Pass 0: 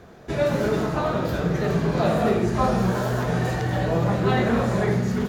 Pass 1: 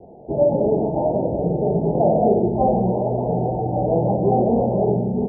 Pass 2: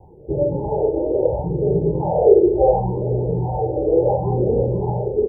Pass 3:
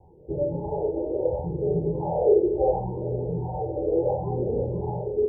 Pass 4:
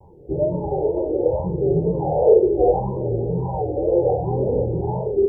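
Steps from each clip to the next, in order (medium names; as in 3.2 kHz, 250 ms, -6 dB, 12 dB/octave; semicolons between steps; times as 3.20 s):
steep low-pass 870 Hz 96 dB/octave; bass shelf 190 Hz -11 dB; trim +7 dB
comb 2.2 ms, depth 79%; phase shifter stages 4, 0.71 Hz, lowest notch 150–1000 Hz; trim +2.5 dB
feedback comb 84 Hz, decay 0.5 s, harmonics all, mix 70%
wow and flutter 110 cents; trim +5.5 dB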